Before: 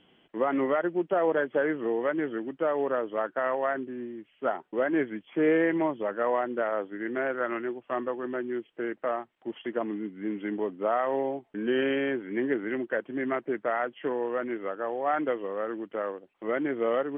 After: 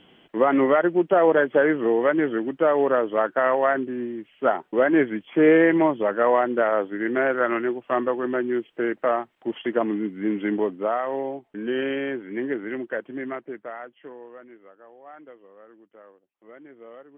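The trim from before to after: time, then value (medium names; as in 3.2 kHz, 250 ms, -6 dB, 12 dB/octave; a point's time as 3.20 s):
10.57 s +7.5 dB
11.02 s +0.5 dB
13.09 s +0.5 dB
13.75 s -8 dB
14.77 s -17.5 dB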